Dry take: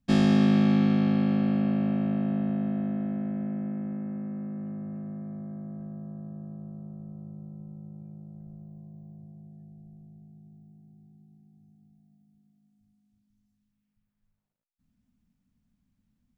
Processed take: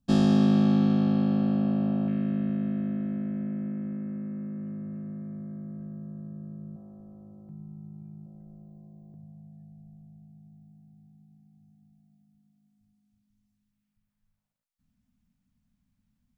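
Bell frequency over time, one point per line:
bell -14.5 dB 0.48 oct
2100 Hz
from 2.08 s 810 Hz
from 6.76 s 150 Hz
from 7.49 s 520 Hz
from 8.26 s 120 Hz
from 9.14 s 380 Hz

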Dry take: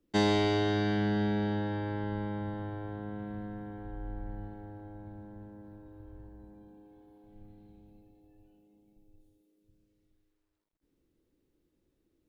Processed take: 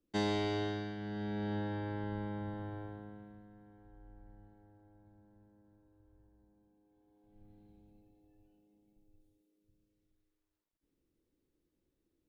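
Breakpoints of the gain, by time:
0.64 s -7 dB
0.96 s -14 dB
1.56 s -4.5 dB
2.8 s -4.5 dB
3.44 s -17 dB
6.8 s -17 dB
7.56 s -6 dB

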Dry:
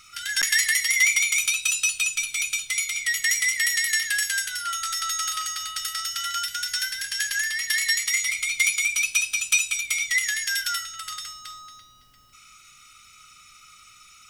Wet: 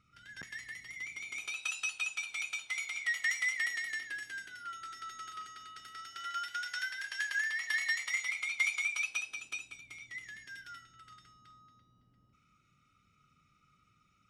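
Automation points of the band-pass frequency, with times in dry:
band-pass, Q 1
1.09 s 160 Hz
1.67 s 790 Hz
3.53 s 790 Hz
4.16 s 310 Hz
5.89 s 310 Hz
6.56 s 800 Hz
9.05 s 800 Hz
9.82 s 180 Hz

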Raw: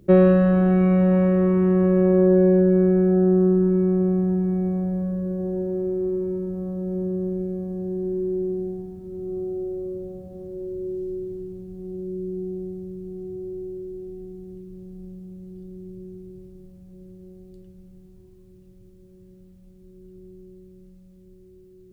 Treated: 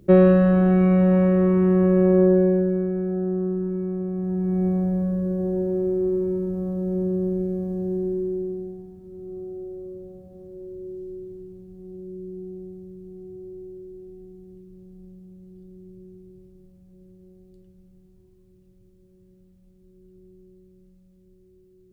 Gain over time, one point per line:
2.23 s +0.5 dB
2.89 s -7.5 dB
4.11 s -7.5 dB
4.64 s +2 dB
7.95 s +2 dB
8.76 s -6 dB

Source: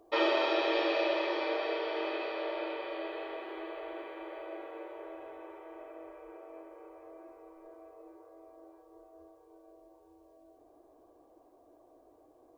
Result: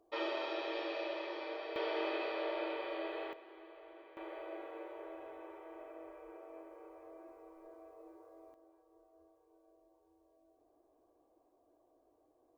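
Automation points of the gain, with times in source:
-10 dB
from 1.76 s -2 dB
from 3.33 s -13.5 dB
from 4.17 s -3 dB
from 8.54 s -10.5 dB

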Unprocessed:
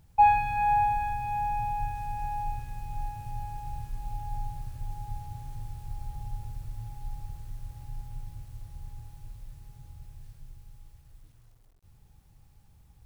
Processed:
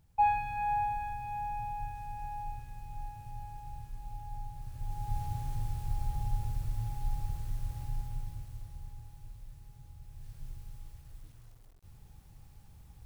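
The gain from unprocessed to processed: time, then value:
4.52 s -7 dB
5.22 s +4 dB
7.81 s +4 dB
8.98 s -4 dB
10.03 s -4 dB
10.45 s +3.5 dB

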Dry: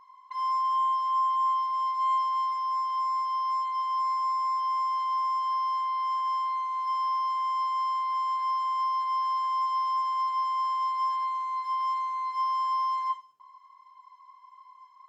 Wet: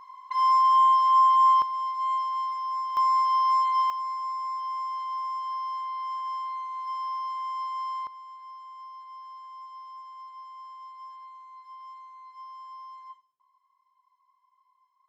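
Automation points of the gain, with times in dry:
+7 dB
from 1.62 s -1.5 dB
from 2.97 s +6 dB
from 3.9 s -4 dB
from 8.07 s -16 dB

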